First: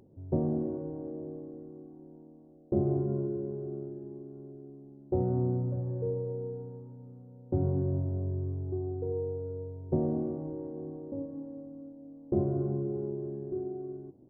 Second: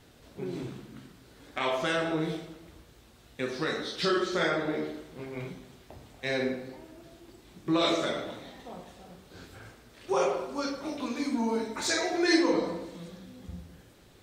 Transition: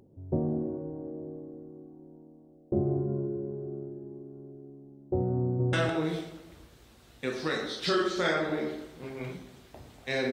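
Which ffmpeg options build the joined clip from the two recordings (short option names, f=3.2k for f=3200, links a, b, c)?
-filter_complex "[0:a]apad=whole_dur=10.32,atrim=end=10.32,atrim=end=5.732[a];[1:a]atrim=start=1.888:end=6.48[b];[a][b]acrossfade=d=0.004:c1=hsin:c2=hsin,asplit=2[c][d];[d]afade=t=in:st=5.43:d=0.01,afade=t=out:st=5.73:d=0.01,aecho=0:1:160|320:0.944061|0.0944061[e];[c][e]amix=inputs=2:normalize=0"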